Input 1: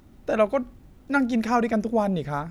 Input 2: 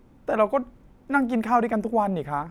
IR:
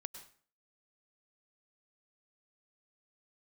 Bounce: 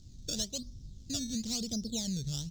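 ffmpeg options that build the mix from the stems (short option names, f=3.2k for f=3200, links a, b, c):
-filter_complex "[0:a]acrusher=samples=15:mix=1:aa=0.000001:lfo=1:lforange=15:lforate=1,volume=2.5dB[a];[1:a]volume=-4.5dB[b];[a][b]amix=inputs=2:normalize=0,firequalizer=gain_entry='entry(120,0);entry(270,-14);entry(1000,-29);entry(2300,-23);entry(3600,0);entry(6600,7);entry(9500,-13)':delay=0.05:min_phase=1,acompressor=threshold=-35dB:ratio=2.5"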